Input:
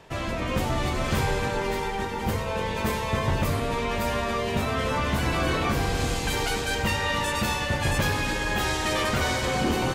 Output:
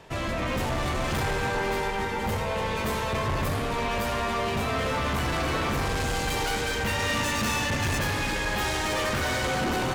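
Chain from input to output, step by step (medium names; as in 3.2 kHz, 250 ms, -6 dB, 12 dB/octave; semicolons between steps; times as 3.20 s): 6.99–7.99 s: fifteen-band graphic EQ 100 Hz +6 dB, 250 Hz +9 dB, 2.5 kHz +4 dB, 6.3 kHz +8 dB; hard clipper -26 dBFS, distortion -8 dB; on a send: feedback echo behind a band-pass 90 ms, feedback 77%, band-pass 1.2 kHz, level -7.5 dB; on the sum: trim +1 dB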